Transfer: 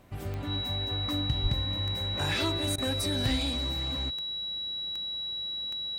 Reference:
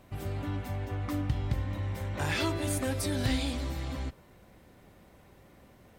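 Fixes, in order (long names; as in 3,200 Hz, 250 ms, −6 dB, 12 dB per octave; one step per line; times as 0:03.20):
click removal
notch filter 3,900 Hz, Q 30
0:01.42–0:01.54: high-pass filter 140 Hz 24 dB per octave
repair the gap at 0:02.76, 20 ms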